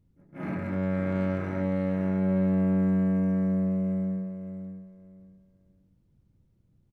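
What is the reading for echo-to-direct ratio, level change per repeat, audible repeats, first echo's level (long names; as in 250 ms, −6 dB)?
−8.0 dB, −13.0 dB, 3, −8.0 dB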